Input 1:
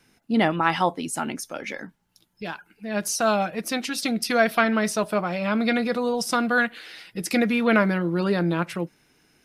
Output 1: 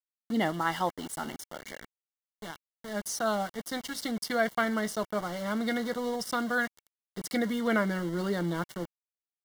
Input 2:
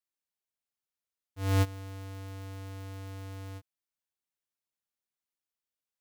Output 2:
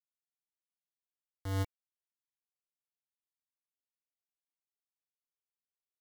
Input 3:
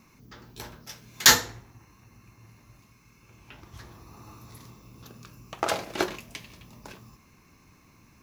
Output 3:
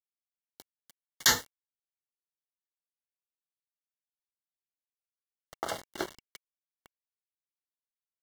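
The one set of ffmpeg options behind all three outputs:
-af "aeval=exprs='val(0)*gte(abs(val(0)),0.0299)':c=same,asuperstop=centerf=2500:order=12:qfactor=5.1,volume=0.422"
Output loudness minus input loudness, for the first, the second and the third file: -7.5 LU, -2.5 LU, -7.5 LU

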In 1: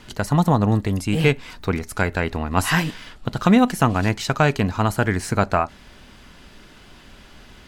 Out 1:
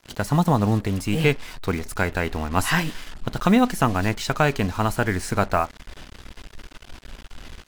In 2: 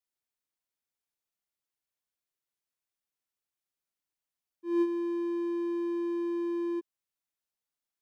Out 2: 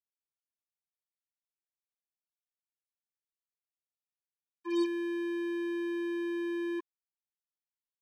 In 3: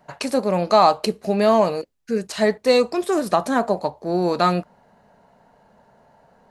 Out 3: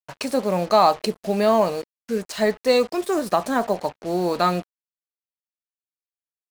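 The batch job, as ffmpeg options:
-af "asubboost=boost=4:cutoff=52,acrusher=bits=5:mix=0:aa=0.5,volume=0.841"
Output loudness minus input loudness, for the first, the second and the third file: -2.0 LU, -2.0 LU, -1.5 LU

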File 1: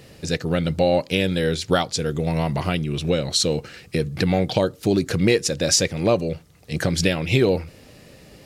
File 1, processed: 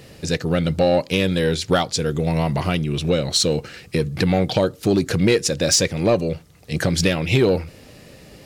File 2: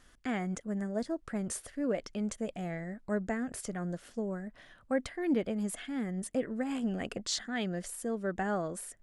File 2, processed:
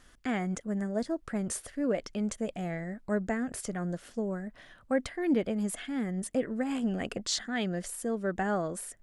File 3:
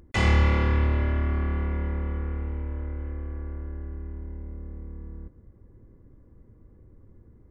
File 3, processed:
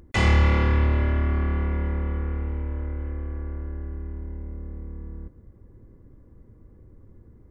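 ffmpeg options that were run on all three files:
-af "acontrast=81,volume=0.596"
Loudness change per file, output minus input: +1.5 LU, +2.5 LU, +2.0 LU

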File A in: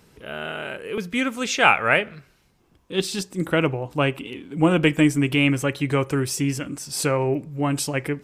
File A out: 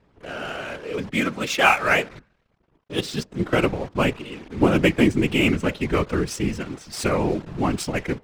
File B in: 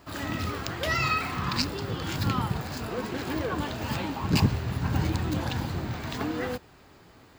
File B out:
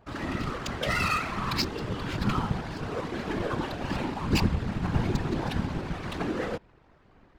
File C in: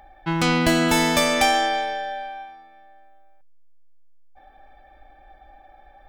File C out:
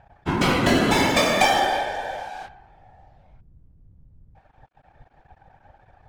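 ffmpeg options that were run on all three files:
-af "acrusher=bits=7:dc=4:mix=0:aa=0.000001,adynamicsmooth=sensitivity=5:basefreq=2200,afftfilt=real='hypot(re,im)*cos(2*PI*random(0))':imag='hypot(re,im)*sin(2*PI*random(1))':win_size=512:overlap=0.75,volume=2"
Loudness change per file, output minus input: -0.5 LU, -1.0 LU, 0.0 LU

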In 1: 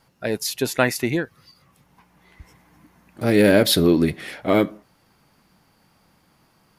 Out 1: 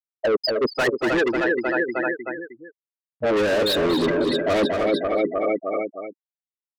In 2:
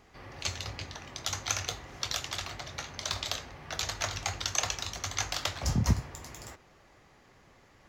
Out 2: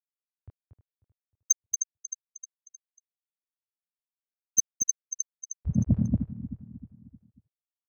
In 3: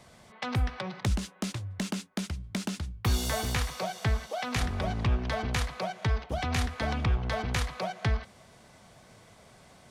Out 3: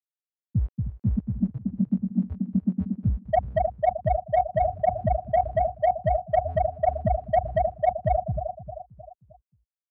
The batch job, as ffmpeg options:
-filter_complex "[0:a]afftfilt=real='re*gte(hypot(re,im),0.251)':imag='im*gte(hypot(re,im),0.251)':win_size=1024:overlap=0.75,bass=f=250:g=-13,treble=f=4000:g=-5,asplit=2[s0][s1];[s1]aecho=0:1:310|620|930|1240:0.158|0.0697|0.0307|0.0135[s2];[s0][s2]amix=inputs=2:normalize=0,asplit=2[s3][s4];[s4]highpass=f=720:p=1,volume=44.7,asoftclip=type=tanh:threshold=0.562[s5];[s3][s5]amix=inputs=2:normalize=0,lowpass=f=4000:p=1,volume=0.501,asplit=2[s6][s7];[s7]adelay=233.2,volume=0.447,highshelf=f=4000:g=-5.25[s8];[s6][s8]amix=inputs=2:normalize=0,areverse,acompressor=threshold=0.0447:ratio=16,areverse,volume=2.66"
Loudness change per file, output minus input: -2.0 LU, +4.5 LU, +5.5 LU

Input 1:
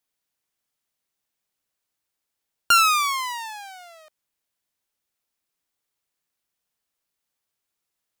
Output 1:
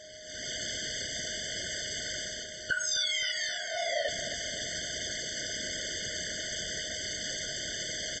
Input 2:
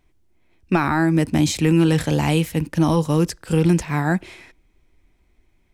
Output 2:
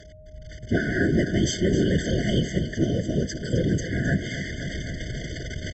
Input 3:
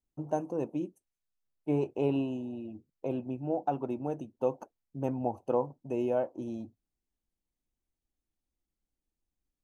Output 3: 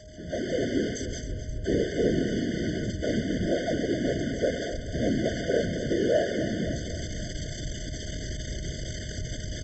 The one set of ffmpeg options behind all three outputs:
-af "aeval=exprs='val(0)+0.5*0.0447*sgn(val(0))':c=same,aresample=16000,aresample=44100,afftfilt=real='hypot(re,im)*cos(2*PI*random(0))':imag='hypot(re,im)*sin(2*PI*random(1))':win_size=512:overlap=0.75,lowshelf=f=120:g=7,aecho=1:1:262|524|786|1048|1310|1572:0.282|0.161|0.0916|0.0522|0.0298|0.017,dynaudnorm=f=250:g=3:m=5.96,aeval=exprs='val(0)+0.00891*sin(2*PI*620*n/s)':c=same,highpass=f=40:p=1,tiltshelf=f=750:g=-3,afftfilt=real='re*eq(mod(floor(b*sr/1024/730),2),0)':imag='im*eq(mod(floor(b*sr/1024/730),2),0)':win_size=1024:overlap=0.75,volume=0.447"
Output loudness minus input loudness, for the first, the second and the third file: -13.5 LU, -6.0 LU, +4.5 LU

